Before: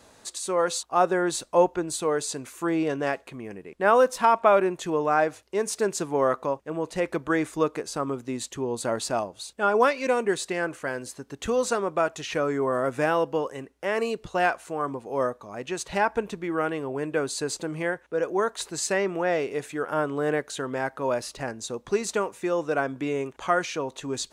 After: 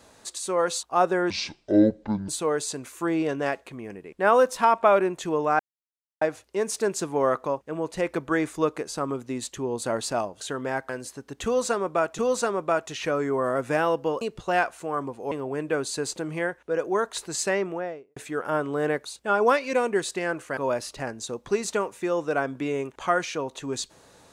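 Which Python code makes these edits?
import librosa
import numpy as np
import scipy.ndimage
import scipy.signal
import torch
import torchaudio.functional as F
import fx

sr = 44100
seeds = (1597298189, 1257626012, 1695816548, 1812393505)

y = fx.studio_fade_out(x, sr, start_s=18.95, length_s=0.65)
y = fx.edit(y, sr, fx.speed_span(start_s=1.3, length_s=0.59, speed=0.6),
    fx.insert_silence(at_s=5.2, length_s=0.62),
    fx.swap(start_s=9.39, length_s=1.52, other_s=20.49, other_length_s=0.49),
    fx.repeat(start_s=11.47, length_s=0.73, count=2),
    fx.cut(start_s=13.5, length_s=0.58),
    fx.cut(start_s=15.18, length_s=1.57), tone=tone)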